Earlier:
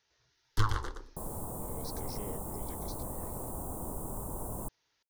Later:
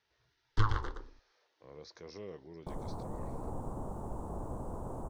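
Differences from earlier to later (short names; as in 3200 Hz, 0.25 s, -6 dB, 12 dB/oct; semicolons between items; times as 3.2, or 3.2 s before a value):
second sound: entry +1.50 s; master: add air absorption 150 m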